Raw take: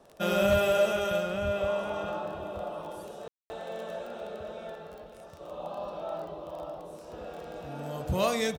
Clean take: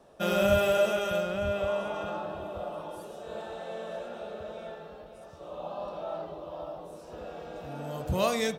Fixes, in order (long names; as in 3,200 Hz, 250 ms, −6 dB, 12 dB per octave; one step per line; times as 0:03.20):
clipped peaks rebuilt −17 dBFS
click removal
ambience match 0:03.28–0:03.50
echo removal 461 ms −17 dB